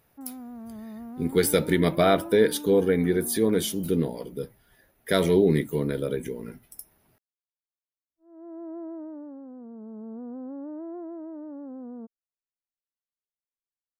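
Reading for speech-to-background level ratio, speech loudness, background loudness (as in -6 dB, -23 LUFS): 16.5 dB, -23.5 LUFS, -40.0 LUFS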